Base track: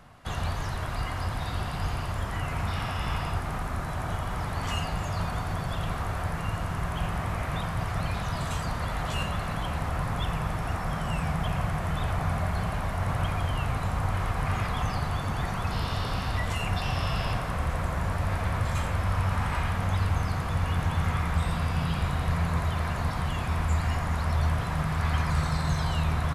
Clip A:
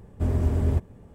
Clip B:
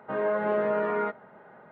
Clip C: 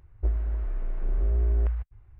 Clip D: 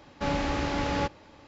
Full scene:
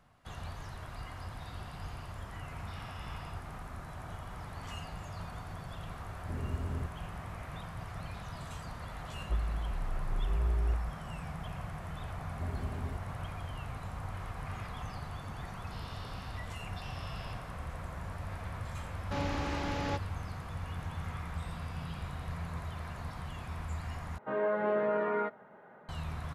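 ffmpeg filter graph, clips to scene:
ffmpeg -i bed.wav -i cue0.wav -i cue1.wav -i cue2.wav -i cue3.wav -filter_complex "[1:a]asplit=2[link_01][link_02];[0:a]volume=-12.5dB,asplit=2[link_03][link_04];[link_03]atrim=end=24.184[link_05];[2:a]atrim=end=1.71,asetpts=PTS-STARTPTS,volume=-4dB[link_06];[link_04]atrim=start=25.886[link_07];[link_01]atrim=end=1.14,asetpts=PTS-STARTPTS,volume=-14dB,afade=type=in:duration=0.004:curve=hsin,afade=type=out:start_time=1.136:duration=0.004:curve=hsin,adelay=6080[link_08];[3:a]atrim=end=2.19,asetpts=PTS-STARTPTS,volume=-6.5dB,afade=type=in:duration=0.004:curve=hsin,afade=type=out:start_time=2.186:duration=0.004:curve=hsin,adelay=9070[link_09];[link_02]atrim=end=1.14,asetpts=PTS-STARTPTS,volume=-15.5dB,afade=type=in:duration=0.004:curve=hsin,afade=type=out:start_time=1.136:duration=0.004:curve=hsin,adelay=12190[link_10];[4:a]atrim=end=1.47,asetpts=PTS-STARTPTS,volume=-7dB,afade=type=in:duration=0.004:curve=hsin,afade=type=out:start_time=1.466:duration=0.004:curve=hsin,adelay=18900[link_11];[link_05][link_06]acrossfade=duration=0.004:curve1=hsin:curve2=hsin[link_12];[link_12][link_07]acrossfade=duration=0.004:curve1=hsin:curve2=hsin[link_13];[link_13][link_08][link_09][link_10][link_11]amix=inputs=5:normalize=0" out.wav

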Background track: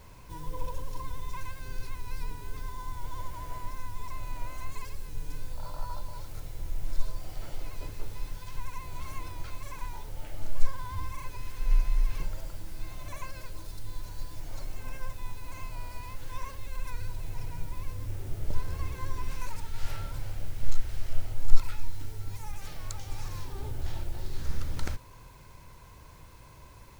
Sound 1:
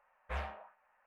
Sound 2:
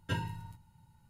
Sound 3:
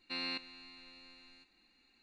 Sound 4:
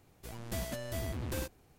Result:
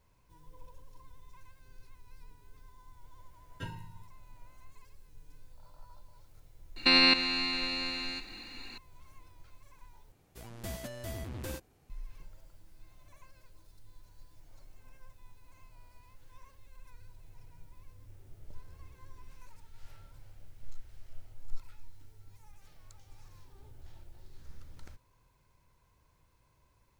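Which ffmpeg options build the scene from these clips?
ffmpeg -i bed.wav -i cue0.wav -i cue1.wav -i cue2.wav -i cue3.wav -filter_complex "[0:a]volume=-18dB[link_01];[3:a]alimiter=level_in=34dB:limit=-1dB:release=50:level=0:latency=1[link_02];[link_01]asplit=2[link_03][link_04];[link_03]atrim=end=10.124[link_05];[4:a]atrim=end=1.78,asetpts=PTS-STARTPTS,volume=-3dB[link_06];[link_04]atrim=start=11.896[link_07];[2:a]atrim=end=1.09,asetpts=PTS-STARTPTS,volume=-7.5dB,afade=type=in:duration=0.004:curve=hsin,afade=type=out:start_time=1.086:duration=0.004:curve=hsin,adelay=3510[link_08];[link_02]atrim=end=2.02,asetpts=PTS-STARTPTS,volume=-11.5dB,afade=type=in:duration=0.004:curve=hsin,afade=type=out:start_time=2.016:duration=0.004:curve=hsin,adelay=6760[link_09];[link_05][link_06]acrossfade=duration=0.004:curve1=hsin:curve2=hsin[link_10];[link_10][link_07]acrossfade=duration=0.004:curve1=hsin:curve2=hsin[link_11];[link_11][link_08][link_09]amix=inputs=3:normalize=0" out.wav

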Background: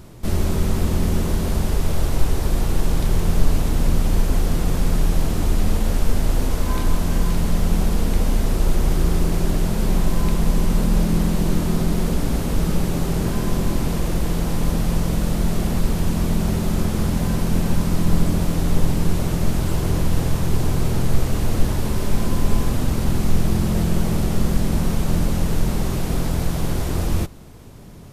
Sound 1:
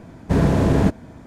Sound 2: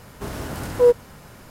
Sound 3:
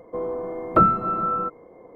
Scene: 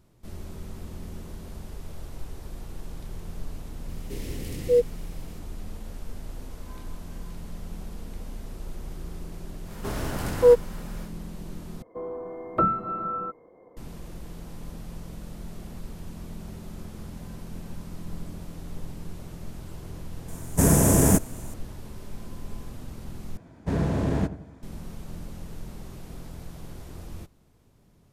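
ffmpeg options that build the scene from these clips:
ffmpeg -i bed.wav -i cue0.wav -i cue1.wav -i cue2.wav -filter_complex "[2:a]asplit=2[link_01][link_02];[1:a]asplit=2[link_03][link_04];[0:a]volume=-19dB[link_05];[link_01]asuperstop=centerf=1000:order=12:qfactor=0.73[link_06];[link_03]aexciter=amount=11:drive=8.9:freq=6400[link_07];[link_04]asplit=2[link_08][link_09];[link_09]adelay=88,lowpass=frequency=1200:poles=1,volume=-12.5dB,asplit=2[link_10][link_11];[link_11]adelay=88,lowpass=frequency=1200:poles=1,volume=0.46,asplit=2[link_12][link_13];[link_13]adelay=88,lowpass=frequency=1200:poles=1,volume=0.46,asplit=2[link_14][link_15];[link_15]adelay=88,lowpass=frequency=1200:poles=1,volume=0.46,asplit=2[link_16][link_17];[link_17]adelay=88,lowpass=frequency=1200:poles=1,volume=0.46[link_18];[link_08][link_10][link_12][link_14][link_16][link_18]amix=inputs=6:normalize=0[link_19];[link_05]asplit=3[link_20][link_21][link_22];[link_20]atrim=end=11.824[link_23];[3:a]atrim=end=1.95,asetpts=PTS-STARTPTS,volume=-6.5dB[link_24];[link_21]atrim=start=13.766:end=23.374[link_25];[link_19]atrim=end=1.26,asetpts=PTS-STARTPTS,volume=-9dB[link_26];[link_22]atrim=start=24.626[link_27];[link_06]atrim=end=1.5,asetpts=PTS-STARTPTS,volume=-4.5dB,afade=type=in:duration=0.004:curve=hsin,afade=type=out:start_time=1.496:duration=0.004:curve=hsin,adelay=171549S[link_28];[link_02]atrim=end=1.5,asetpts=PTS-STARTPTS,volume=-0.5dB,afade=type=in:duration=0.1,afade=type=out:start_time=1.4:duration=0.1,adelay=9630[link_29];[link_07]atrim=end=1.26,asetpts=PTS-STARTPTS,volume=-2.5dB,afade=type=in:duration=0.004:curve=hsin,afade=type=out:start_time=1.256:duration=0.004:curve=hsin,adelay=20280[link_30];[link_23][link_24]acrossfade=duration=0.004:curve1=hsin:curve2=hsin[link_31];[link_31][link_25]acrossfade=duration=0.004:curve1=hsin:curve2=hsin[link_32];[link_32][link_26]acrossfade=duration=0.004:curve1=hsin:curve2=hsin[link_33];[link_33][link_27]acrossfade=duration=0.004:curve1=hsin:curve2=hsin[link_34];[link_34][link_28][link_29][link_30]amix=inputs=4:normalize=0" out.wav

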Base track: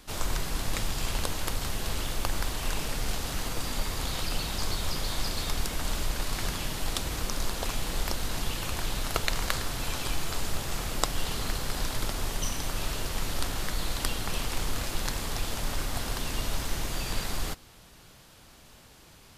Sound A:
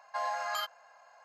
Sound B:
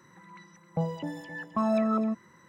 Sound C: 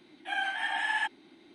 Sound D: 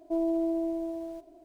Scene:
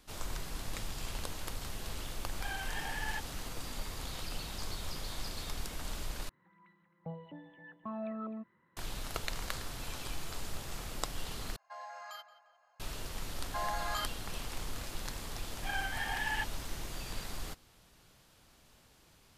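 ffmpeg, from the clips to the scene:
ffmpeg -i bed.wav -i cue0.wav -i cue1.wav -i cue2.wav -filter_complex "[3:a]asplit=2[link_01][link_02];[1:a]asplit=2[link_03][link_04];[0:a]volume=-9.5dB[link_05];[2:a]aresample=8000,aresample=44100[link_06];[link_03]asplit=2[link_07][link_08];[link_08]adelay=175,lowpass=frequency=2600:poles=1,volume=-13dB,asplit=2[link_09][link_10];[link_10]adelay=175,lowpass=frequency=2600:poles=1,volume=0.5,asplit=2[link_11][link_12];[link_12]adelay=175,lowpass=frequency=2600:poles=1,volume=0.5,asplit=2[link_13][link_14];[link_14]adelay=175,lowpass=frequency=2600:poles=1,volume=0.5,asplit=2[link_15][link_16];[link_16]adelay=175,lowpass=frequency=2600:poles=1,volume=0.5[link_17];[link_07][link_09][link_11][link_13][link_15][link_17]amix=inputs=6:normalize=0[link_18];[link_05]asplit=3[link_19][link_20][link_21];[link_19]atrim=end=6.294[link_22];[link_06]atrim=end=2.48,asetpts=PTS-STARTPTS,volume=-14dB[link_23];[link_20]atrim=start=8.766:end=11.564[link_24];[link_18]atrim=end=1.24,asetpts=PTS-STARTPTS,volume=-13dB[link_25];[link_21]atrim=start=12.796[link_26];[link_01]atrim=end=1.54,asetpts=PTS-STARTPTS,volume=-10.5dB,afade=type=in:duration=0.004:curve=hsin,afade=type=out:start_time=1.536:duration=0.004:curve=hsin,adelay=2130[link_27];[link_04]atrim=end=1.24,asetpts=PTS-STARTPTS,volume=-3dB,afade=type=in:duration=0.004:curve=hsin,afade=type=out:start_time=1.236:duration=0.004:curve=hsin,adelay=13400[link_28];[link_02]atrim=end=1.54,asetpts=PTS-STARTPTS,volume=-6dB,afade=type=in:duration=0.004:curve=hsin,afade=type=out:start_time=1.536:duration=0.004:curve=hsin,adelay=15370[link_29];[link_22][link_23]acrossfade=duration=0.004:curve1=hsin:curve2=hsin[link_30];[link_30][link_24]acrossfade=duration=0.004:curve1=hsin:curve2=hsin[link_31];[link_31][link_25]acrossfade=duration=0.004:curve1=hsin:curve2=hsin[link_32];[link_32][link_26]acrossfade=duration=0.004:curve1=hsin:curve2=hsin[link_33];[link_33][link_27][link_28][link_29]amix=inputs=4:normalize=0" out.wav

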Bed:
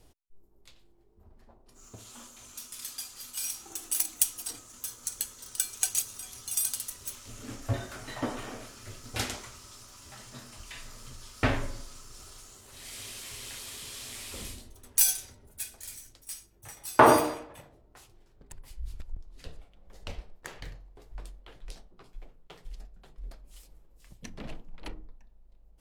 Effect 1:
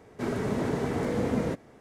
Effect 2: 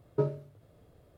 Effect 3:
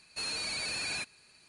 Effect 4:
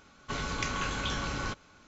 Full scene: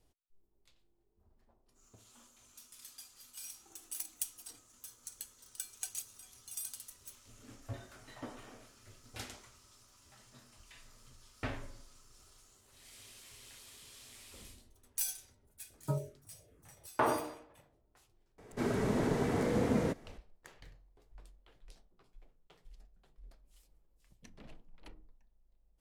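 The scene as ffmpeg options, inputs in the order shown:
ffmpeg -i bed.wav -i cue0.wav -i cue1.wav -filter_complex "[0:a]volume=-13dB[link_01];[2:a]asplit=2[link_02][link_03];[link_03]afreqshift=-2.5[link_04];[link_02][link_04]amix=inputs=2:normalize=1[link_05];[1:a]highshelf=frequency=5200:gain=4[link_06];[link_05]atrim=end=1.17,asetpts=PTS-STARTPTS,volume=-2dB,afade=type=in:duration=0.004:curve=hsin,afade=type=out:start_time=1.166:duration=0.004:curve=hsin,adelay=15700[link_07];[link_06]atrim=end=1.8,asetpts=PTS-STARTPTS,volume=-3dB,afade=type=in:duration=0.004:curve=hsin,afade=type=out:start_time=1.796:duration=0.004:curve=hsin,adelay=18380[link_08];[link_01][link_07][link_08]amix=inputs=3:normalize=0" out.wav

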